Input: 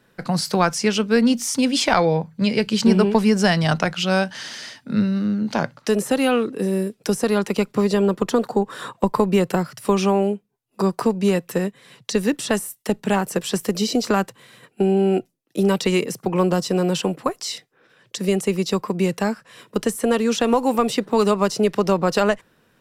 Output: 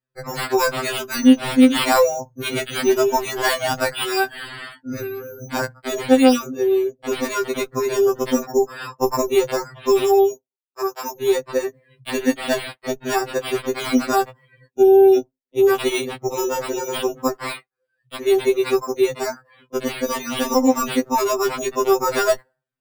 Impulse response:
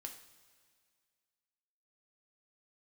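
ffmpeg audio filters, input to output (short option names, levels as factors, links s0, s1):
-filter_complex "[0:a]acrusher=samples=7:mix=1:aa=0.000001,asplit=3[s0][s1][s2];[s0]afade=t=out:st=10.32:d=0.02[s3];[s1]highpass=f=990:p=1,afade=t=in:st=10.32:d=0.02,afade=t=out:st=11.17:d=0.02[s4];[s2]afade=t=in:st=11.17:d=0.02[s5];[s3][s4][s5]amix=inputs=3:normalize=0,afftdn=nr=32:nf=-42,afftfilt=real='re*2.45*eq(mod(b,6),0)':imag='im*2.45*eq(mod(b,6),0)':win_size=2048:overlap=0.75,volume=1.5"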